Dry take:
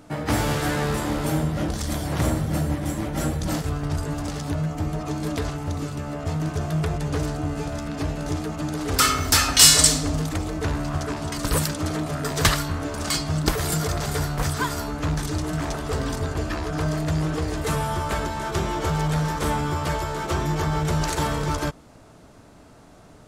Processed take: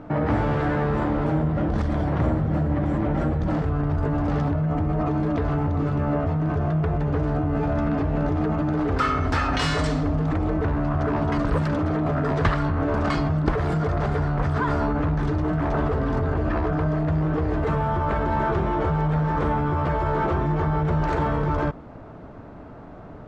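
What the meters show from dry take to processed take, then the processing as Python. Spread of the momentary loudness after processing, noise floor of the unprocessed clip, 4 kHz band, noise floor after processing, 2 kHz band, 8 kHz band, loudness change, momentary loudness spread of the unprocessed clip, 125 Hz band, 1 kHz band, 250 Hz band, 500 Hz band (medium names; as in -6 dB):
2 LU, -49 dBFS, -14.5 dB, -41 dBFS, -2.0 dB, -26.5 dB, 0.0 dB, 8 LU, +2.5 dB, +2.0 dB, +3.0 dB, +3.5 dB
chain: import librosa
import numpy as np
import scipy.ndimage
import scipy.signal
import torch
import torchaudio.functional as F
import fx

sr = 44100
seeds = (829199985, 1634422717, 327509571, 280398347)

p1 = scipy.signal.sosfilt(scipy.signal.butter(2, 1500.0, 'lowpass', fs=sr, output='sos'), x)
p2 = fx.over_compress(p1, sr, threshold_db=-30.0, ratio=-0.5)
y = p1 + (p2 * librosa.db_to_amplitude(-1.0))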